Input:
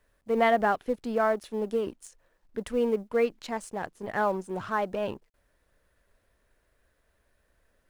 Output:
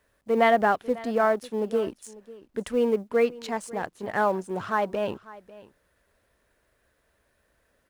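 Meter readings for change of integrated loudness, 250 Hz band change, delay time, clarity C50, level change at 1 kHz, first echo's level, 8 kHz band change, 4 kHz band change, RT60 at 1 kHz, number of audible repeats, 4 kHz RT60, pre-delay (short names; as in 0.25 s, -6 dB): +2.5 dB, +2.5 dB, 0.546 s, none, +3.0 dB, -19.5 dB, +3.0 dB, +3.0 dB, none, 1, none, none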